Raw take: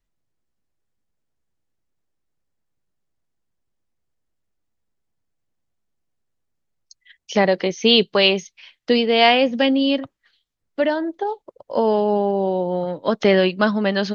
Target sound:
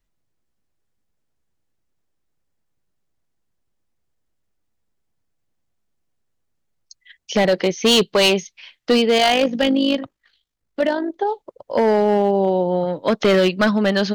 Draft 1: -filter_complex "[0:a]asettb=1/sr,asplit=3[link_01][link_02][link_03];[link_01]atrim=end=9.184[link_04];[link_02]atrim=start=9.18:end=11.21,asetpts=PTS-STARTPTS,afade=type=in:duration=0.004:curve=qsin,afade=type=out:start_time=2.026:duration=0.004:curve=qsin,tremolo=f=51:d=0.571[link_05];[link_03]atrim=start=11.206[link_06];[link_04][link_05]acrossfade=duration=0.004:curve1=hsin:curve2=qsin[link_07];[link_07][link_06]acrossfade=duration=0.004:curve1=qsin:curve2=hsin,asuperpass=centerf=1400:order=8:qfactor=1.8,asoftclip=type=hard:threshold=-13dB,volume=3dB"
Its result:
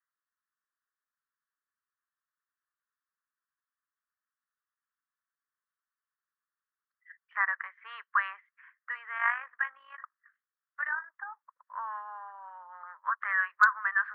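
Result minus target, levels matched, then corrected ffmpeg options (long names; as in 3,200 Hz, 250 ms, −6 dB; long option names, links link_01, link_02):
1,000 Hz band +3.5 dB
-filter_complex "[0:a]asettb=1/sr,asplit=3[link_01][link_02][link_03];[link_01]atrim=end=9.184[link_04];[link_02]atrim=start=9.18:end=11.21,asetpts=PTS-STARTPTS,afade=type=in:duration=0.004:curve=qsin,afade=type=out:start_time=2.026:duration=0.004:curve=qsin,tremolo=f=51:d=0.571[link_05];[link_03]atrim=start=11.206[link_06];[link_04][link_05]acrossfade=duration=0.004:curve1=hsin:curve2=qsin[link_07];[link_07][link_06]acrossfade=duration=0.004:curve1=qsin:curve2=hsin,asoftclip=type=hard:threshold=-13dB,volume=3dB"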